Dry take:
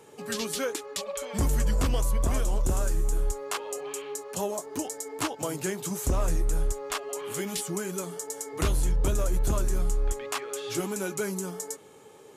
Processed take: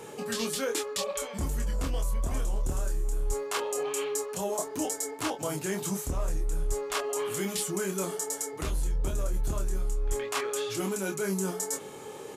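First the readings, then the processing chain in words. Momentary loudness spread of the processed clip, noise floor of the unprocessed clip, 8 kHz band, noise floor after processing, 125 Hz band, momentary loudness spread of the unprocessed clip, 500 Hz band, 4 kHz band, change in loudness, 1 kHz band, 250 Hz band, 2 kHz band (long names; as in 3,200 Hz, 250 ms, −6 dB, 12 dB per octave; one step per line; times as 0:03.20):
3 LU, −50 dBFS, +0.5 dB, −43 dBFS, −4.0 dB, 8 LU, +0.5 dB, 0.0 dB, −1.5 dB, −0.5 dB, −1.0 dB, 0.0 dB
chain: reversed playback
downward compressor 10 to 1, threshold −37 dBFS, peak gain reduction 15.5 dB
reversed playback
double-tracking delay 26 ms −5 dB
level +8 dB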